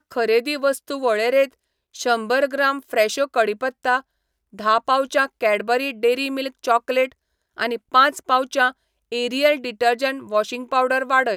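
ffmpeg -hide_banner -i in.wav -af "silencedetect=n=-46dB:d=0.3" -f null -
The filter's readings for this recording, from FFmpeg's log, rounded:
silence_start: 1.53
silence_end: 1.94 | silence_duration: 0.41
silence_start: 4.01
silence_end: 4.53 | silence_duration: 0.52
silence_start: 7.12
silence_end: 7.57 | silence_duration: 0.44
silence_start: 8.72
silence_end: 9.12 | silence_duration: 0.40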